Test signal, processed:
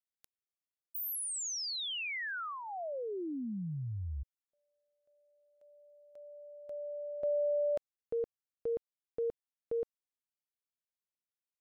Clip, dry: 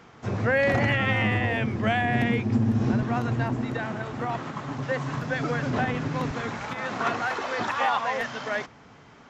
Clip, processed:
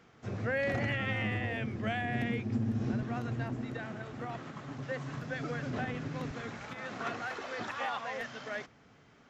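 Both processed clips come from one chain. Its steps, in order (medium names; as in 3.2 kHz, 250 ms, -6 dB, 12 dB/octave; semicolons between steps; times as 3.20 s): peaking EQ 950 Hz -6 dB 0.51 oct; trim -9 dB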